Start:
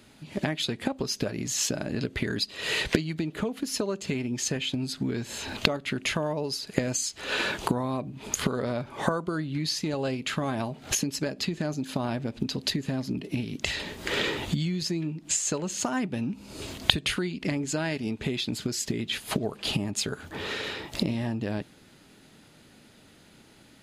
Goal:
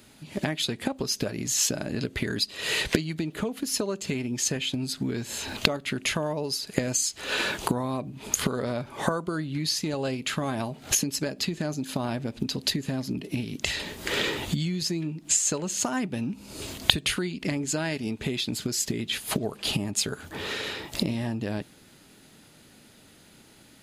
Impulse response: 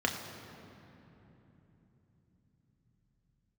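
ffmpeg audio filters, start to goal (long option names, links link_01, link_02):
-af "highshelf=frequency=7400:gain=8.5"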